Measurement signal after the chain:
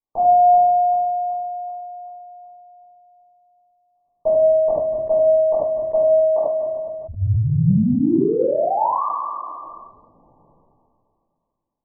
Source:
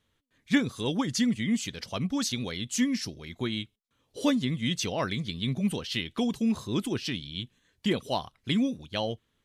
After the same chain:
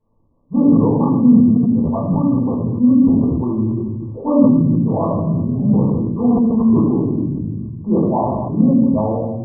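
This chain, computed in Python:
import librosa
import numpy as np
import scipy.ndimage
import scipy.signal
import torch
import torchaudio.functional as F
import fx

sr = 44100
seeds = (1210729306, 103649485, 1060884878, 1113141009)

y = fx.brickwall_lowpass(x, sr, high_hz=1200.0)
y = fx.room_shoebox(y, sr, seeds[0], volume_m3=320.0, walls='mixed', distance_m=4.7)
y = fx.sustainer(y, sr, db_per_s=23.0)
y = y * librosa.db_to_amplitude(-1.5)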